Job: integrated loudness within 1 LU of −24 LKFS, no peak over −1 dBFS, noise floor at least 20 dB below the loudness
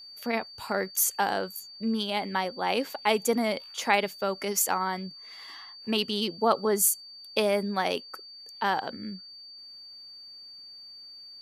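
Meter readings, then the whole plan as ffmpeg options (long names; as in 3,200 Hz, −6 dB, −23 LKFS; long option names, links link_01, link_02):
interfering tone 4,600 Hz; level of the tone −44 dBFS; integrated loudness −28.0 LKFS; sample peak −8.5 dBFS; target loudness −24.0 LKFS
→ -af "bandreject=frequency=4600:width=30"
-af "volume=4dB"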